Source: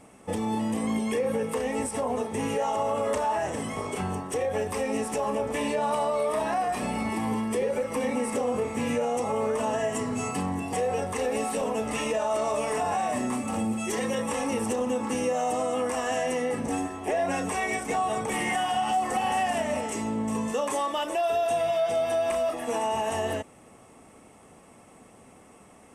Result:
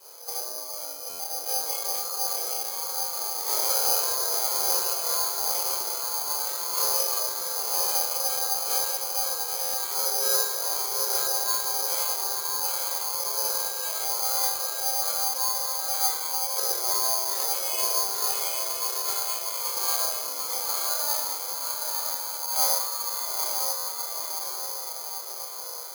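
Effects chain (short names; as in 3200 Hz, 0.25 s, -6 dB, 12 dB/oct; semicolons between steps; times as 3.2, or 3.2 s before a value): HPF 59 Hz 24 dB/oct; negative-ratio compressor -32 dBFS, ratio -0.5; chorus voices 6, 1.2 Hz, delay 28 ms, depth 3 ms; resonator bank E2 minor, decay 0.5 s; frequency shift +290 Hz; diffused feedback echo 0.907 s, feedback 60%, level -3 dB; reverb RT60 0.85 s, pre-delay 7 ms, DRR 0.5 dB; careless resampling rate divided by 8×, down filtered, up zero stuff; stuck buffer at 1.09/9.63/23.77, samples 512, times 8; gain +8.5 dB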